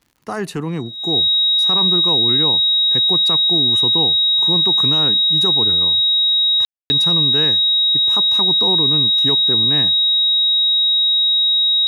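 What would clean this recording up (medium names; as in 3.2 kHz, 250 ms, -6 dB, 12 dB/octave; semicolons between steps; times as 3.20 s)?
de-click; band-stop 3.8 kHz, Q 30; room tone fill 6.65–6.90 s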